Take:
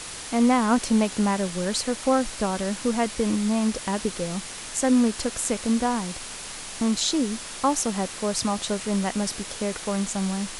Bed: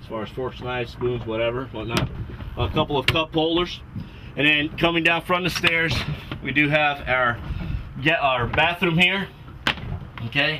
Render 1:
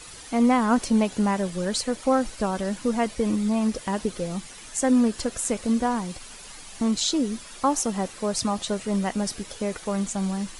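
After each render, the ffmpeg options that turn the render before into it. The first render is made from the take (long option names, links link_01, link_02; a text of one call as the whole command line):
ffmpeg -i in.wav -af "afftdn=noise_reduction=10:noise_floor=-37" out.wav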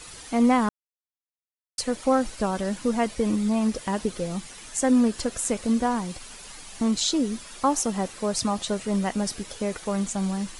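ffmpeg -i in.wav -filter_complex "[0:a]asplit=3[link_01][link_02][link_03];[link_01]atrim=end=0.69,asetpts=PTS-STARTPTS,afade=type=out:start_time=0.686:duration=0.004:curve=hsin[link_04];[link_02]atrim=start=0.69:end=1.78,asetpts=PTS-STARTPTS,volume=0[link_05];[link_03]atrim=start=1.78,asetpts=PTS-STARTPTS,afade=type=in:duration=0.004:curve=hsin[link_06];[link_04][link_05][link_06]concat=n=3:v=0:a=1" out.wav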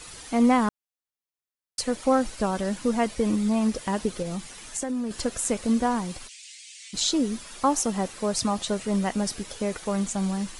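ffmpeg -i in.wav -filter_complex "[0:a]asettb=1/sr,asplit=3[link_01][link_02][link_03];[link_01]atrim=end=4.224[link_04];[link_02]atrim=start=4.22:end=5.11,asetpts=PTS-STARTPTS,afade=type=in:duration=0.004:curve=qsin,afade=type=out:start_time=0.886:duration=0.004:curve=qsin,acompressor=threshold=-26dB:ratio=6:attack=3.2:release=140:knee=1:detection=peak[link_05];[link_03]atrim=start=5.106[link_06];[link_04][link_05]acrossfade=duration=0.004:curve1=hsin:curve2=qsin[link_07];[link_07][link_06]acrossfade=duration=0.004:curve1=qsin:curve2=hsin,asplit=3[link_08][link_09][link_10];[link_08]afade=type=out:start_time=6.27:duration=0.02[link_11];[link_09]asuperpass=centerf=4500:order=12:qfactor=0.64,afade=type=in:start_time=6.27:duration=0.02,afade=type=out:start_time=6.93:duration=0.02[link_12];[link_10]afade=type=in:start_time=6.93:duration=0.02[link_13];[link_11][link_12][link_13]amix=inputs=3:normalize=0" out.wav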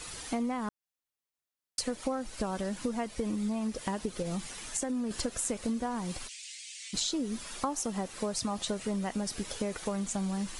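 ffmpeg -i in.wav -af "acompressor=threshold=-29dB:ratio=12" out.wav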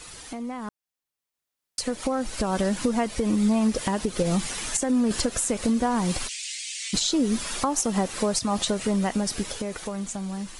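ffmpeg -i in.wav -af "alimiter=limit=-24dB:level=0:latency=1:release=171,dynaudnorm=framelen=310:gausssize=11:maxgain=11dB" out.wav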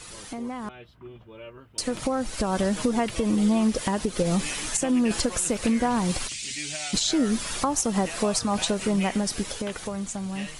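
ffmpeg -i in.wav -i bed.wav -filter_complex "[1:a]volume=-19.5dB[link_01];[0:a][link_01]amix=inputs=2:normalize=0" out.wav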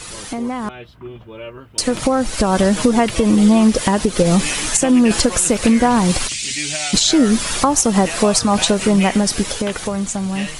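ffmpeg -i in.wav -af "volume=10dB" out.wav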